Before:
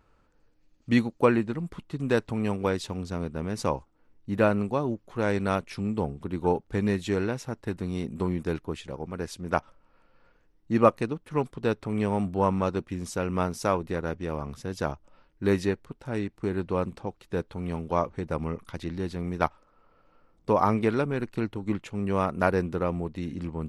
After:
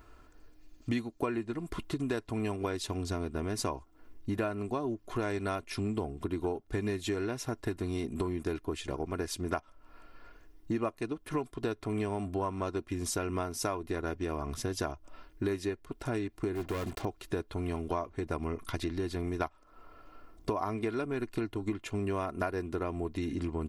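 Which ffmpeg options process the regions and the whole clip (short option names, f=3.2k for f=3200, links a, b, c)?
-filter_complex "[0:a]asettb=1/sr,asplit=3[a][b][c];[a]atrim=end=16.554[d];[b]atrim=start=16.55:end=17.05,asetpts=PTS-STARTPTS,afade=t=in:d=0.004:c=qsin,afade=t=out:st=0.496:d=0.004:c=qsin,volume=29dB,asoftclip=hard,volume=-29dB,acrusher=bits=7:mix=0:aa=0.5[e];[c]atrim=start=17.046[f];[d][e]acrossfade=d=0.004:c1=hsin:c2=qsin[g];[g][f]acrossfade=d=0.004:c1=qsin:c2=hsin,highshelf=f=9.1k:g=8,aecho=1:1:2.9:0.61,acompressor=threshold=-37dB:ratio=6,volume=6dB"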